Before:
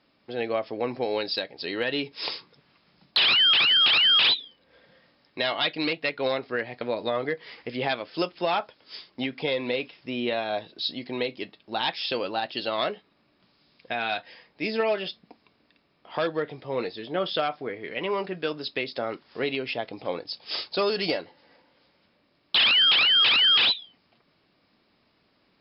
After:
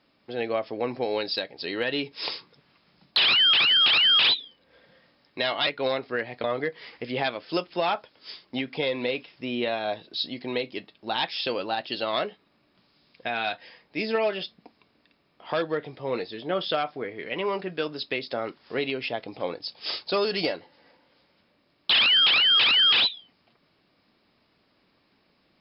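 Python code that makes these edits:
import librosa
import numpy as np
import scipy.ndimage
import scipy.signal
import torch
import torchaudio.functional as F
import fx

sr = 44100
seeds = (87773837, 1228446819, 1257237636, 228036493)

y = fx.edit(x, sr, fx.cut(start_s=5.67, length_s=0.4),
    fx.cut(start_s=6.84, length_s=0.25), tone=tone)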